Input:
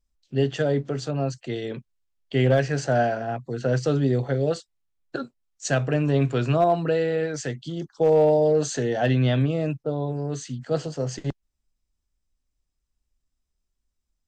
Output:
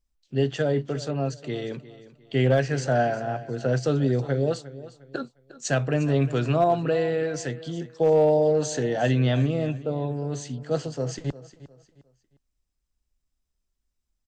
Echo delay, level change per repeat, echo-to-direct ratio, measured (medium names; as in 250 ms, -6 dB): 355 ms, -10.0 dB, -16.0 dB